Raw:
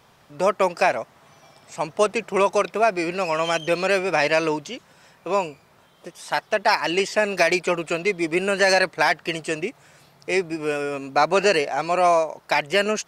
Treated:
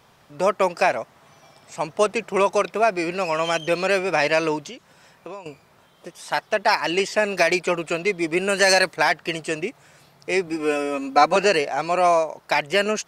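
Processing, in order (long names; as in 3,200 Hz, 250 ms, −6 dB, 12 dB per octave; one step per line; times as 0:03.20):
0:04.69–0:05.46: downward compressor 6 to 1, threshold −35 dBFS, peak gain reduction 17.5 dB
0:08.49–0:08.96: high-shelf EQ 4,900 Hz +9 dB
0:10.47–0:11.36: comb filter 3.9 ms, depth 91%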